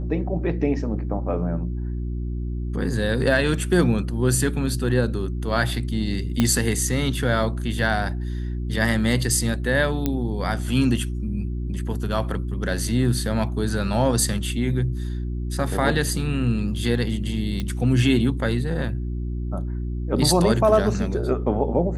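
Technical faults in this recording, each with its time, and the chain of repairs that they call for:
hum 60 Hz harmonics 6 -27 dBFS
6.4 pop -6 dBFS
10.06 pop -9 dBFS
17.6 pop -15 dBFS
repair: de-click; de-hum 60 Hz, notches 6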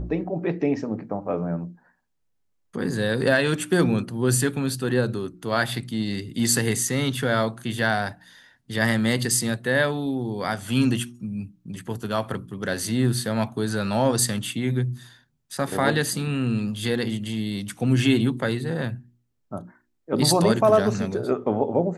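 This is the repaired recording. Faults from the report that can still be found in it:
6.4 pop

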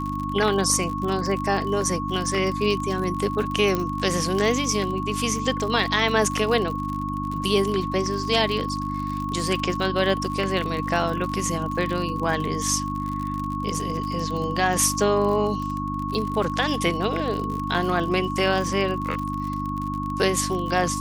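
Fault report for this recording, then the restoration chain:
crackle 56/s -28 dBFS
hum 50 Hz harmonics 6 -30 dBFS
tone 1100 Hz -29 dBFS
3.75 pop -11 dBFS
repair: de-click; de-hum 50 Hz, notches 6; notch 1100 Hz, Q 30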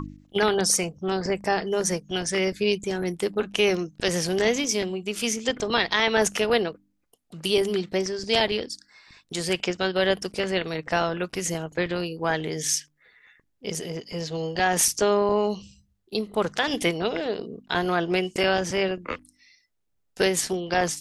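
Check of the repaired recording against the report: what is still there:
3.75 pop

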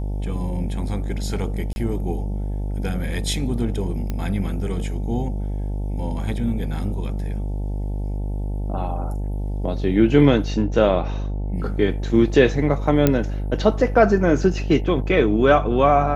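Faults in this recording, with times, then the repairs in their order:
buzz 50 Hz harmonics 18 -25 dBFS
1.73–1.76 gap 31 ms
4.1 pop -14 dBFS
13.07 pop -3 dBFS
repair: de-click; de-hum 50 Hz, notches 18; interpolate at 1.73, 31 ms

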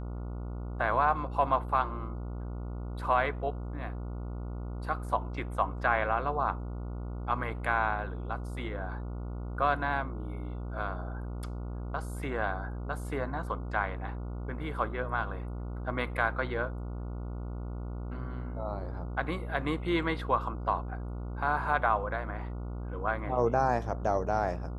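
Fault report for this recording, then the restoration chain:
buzz 60 Hz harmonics 24 -37 dBFS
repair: de-hum 60 Hz, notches 24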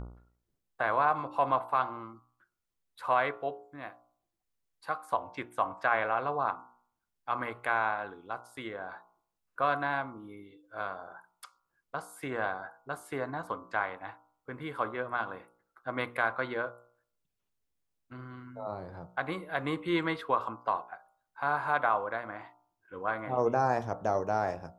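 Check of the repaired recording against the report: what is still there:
none

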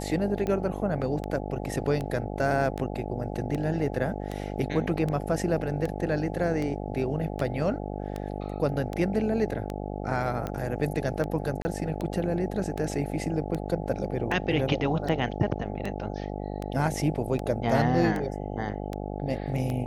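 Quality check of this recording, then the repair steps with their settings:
buzz 50 Hz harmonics 17 -34 dBFS
tick 78 rpm -19 dBFS
11.62–11.65 gap 30 ms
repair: de-click; de-hum 50 Hz, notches 17; interpolate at 11.62, 30 ms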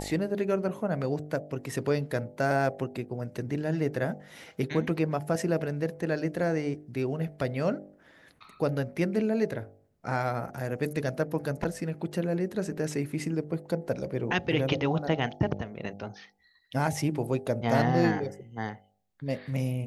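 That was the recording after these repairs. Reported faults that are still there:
none

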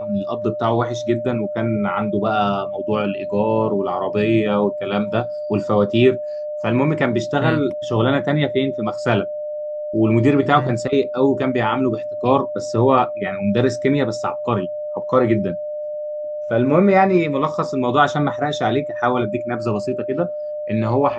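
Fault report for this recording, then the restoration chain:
tone 600 Hz -24 dBFS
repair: notch 600 Hz, Q 30

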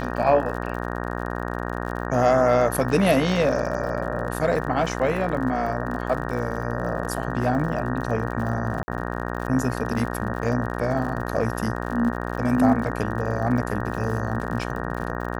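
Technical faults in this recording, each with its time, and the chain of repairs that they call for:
buzz 60 Hz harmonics 31 -29 dBFS
crackle 57/s -32 dBFS
8.83–8.88 gap 50 ms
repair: de-click; de-hum 60 Hz, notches 31; interpolate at 8.83, 50 ms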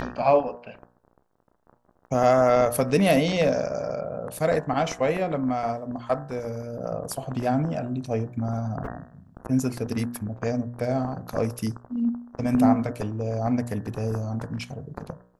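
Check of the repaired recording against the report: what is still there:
none

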